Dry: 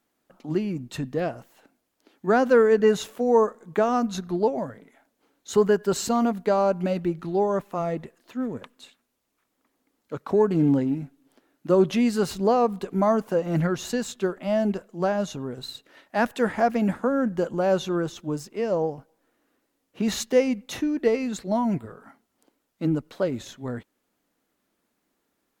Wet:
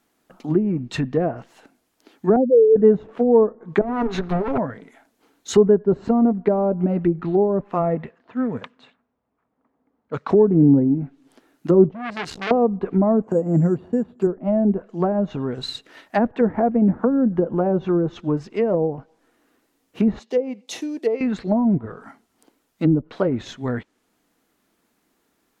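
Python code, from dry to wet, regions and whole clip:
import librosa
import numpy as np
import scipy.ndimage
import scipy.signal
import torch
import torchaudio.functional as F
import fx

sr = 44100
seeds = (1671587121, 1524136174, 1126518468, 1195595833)

y = fx.chain(x, sr, fx.spec_expand(power=3.0),
    fx.lowpass(hz=1100.0, slope=24), at=(2.36, 2.76))
y = fx.chain(y, sr, fx.lower_of_two(delay_ms=7.2),
    fx.over_compress(threshold_db=-28.0, ratio=-1.0), at=(3.81, 4.58))
y = fx.chain(y, sr, fx.env_lowpass(base_hz=960.0, full_db=-27.5),
    fx.highpass(hz=50.0, slope=12),
    fx.peak_eq(hz=340.0, db=-9.5, octaves=0.32), at=(7.95, 10.3))
y = fx.chain(y, sr, fx.level_steps(step_db=13),
    fx.transformer_sat(knee_hz=2500.0), at=(11.89, 12.51))
y = fx.chain(y, sr, fx.highpass(hz=92.0, slope=12),
    fx.resample_bad(factor=6, down='filtered', up='zero_stuff'), at=(13.23, 14.27))
y = fx.chain(y, sr, fx.block_float(bits=7),
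    fx.highpass(hz=470.0, slope=12),
    fx.peak_eq(hz=1500.0, db=-14.5, octaves=1.8), at=(20.19, 21.21))
y = fx.notch(y, sr, hz=560.0, q=12.0)
y = fx.env_lowpass_down(y, sr, base_hz=500.0, full_db=-21.0)
y = fx.dynamic_eq(y, sr, hz=2100.0, q=1.6, threshold_db=-49.0, ratio=4.0, max_db=4)
y = y * librosa.db_to_amplitude(7.0)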